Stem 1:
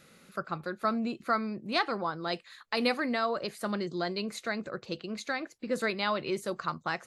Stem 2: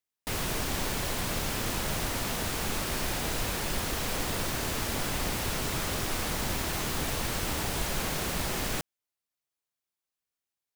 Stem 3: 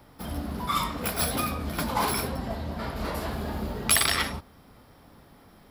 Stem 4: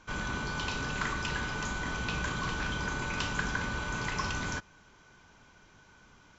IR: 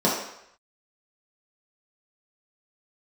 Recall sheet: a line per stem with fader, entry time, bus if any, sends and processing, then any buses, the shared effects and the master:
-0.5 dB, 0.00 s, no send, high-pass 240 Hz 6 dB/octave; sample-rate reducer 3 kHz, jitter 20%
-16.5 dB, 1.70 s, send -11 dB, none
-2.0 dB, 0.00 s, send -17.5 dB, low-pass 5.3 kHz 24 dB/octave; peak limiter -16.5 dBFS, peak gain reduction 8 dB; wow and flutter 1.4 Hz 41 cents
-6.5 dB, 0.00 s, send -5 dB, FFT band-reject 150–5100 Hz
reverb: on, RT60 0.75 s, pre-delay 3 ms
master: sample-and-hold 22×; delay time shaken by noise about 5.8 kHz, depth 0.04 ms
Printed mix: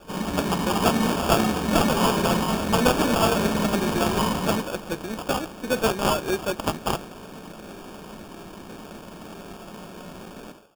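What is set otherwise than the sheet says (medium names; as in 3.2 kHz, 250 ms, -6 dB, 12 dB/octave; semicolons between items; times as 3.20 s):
stem 1 -0.5 dB -> +8.0 dB; stem 4: missing FFT band-reject 150–5100 Hz; master: missing delay time shaken by noise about 5.8 kHz, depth 0.04 ms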